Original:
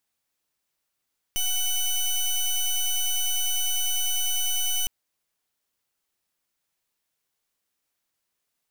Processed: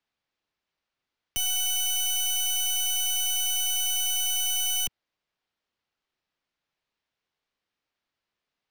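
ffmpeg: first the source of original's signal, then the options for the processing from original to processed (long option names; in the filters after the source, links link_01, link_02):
-f lavfi -i "aevalsrc='0.0596*(2*lt(mod(2990*t,1),0.16)-1)':duration=3.51:sample_rate=44100"
-filter_complex "[0:a]acrossover=split=120[link_01][link_02];[link_01]acompressor=threshold=-35dB:ratio=6[link_03];[link_03][link_02]amix=inputs=2:normalize=0,acrossover=split=180|5100[link_04][link_05][link_06];[link_06]aeval=exprs='val(0)*gte(abs(val(0)),0.00841)':channel_layout=same[link_07];[link_04][link_05][link_07]amix=inputs=3:normalize=0"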